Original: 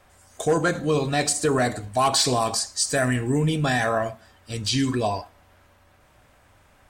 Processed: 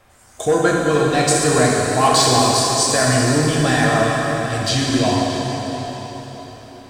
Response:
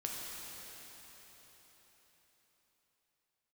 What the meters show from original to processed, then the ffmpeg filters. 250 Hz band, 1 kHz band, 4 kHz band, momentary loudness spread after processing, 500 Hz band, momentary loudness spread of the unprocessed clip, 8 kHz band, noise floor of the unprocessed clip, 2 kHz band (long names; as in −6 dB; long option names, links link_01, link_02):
+7.0 dB, +8.0 dB, +7.0 dB, 13 LU, +7.0 dB, 7 LU, +7.5 dB, −58 dBFS, +7.0 dB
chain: -filter_complex "[1:a]atrim=start_sample=2205[link_01];[0:a][link_01]afir=irnorm=-1:irlink=0,volume=5.5dB"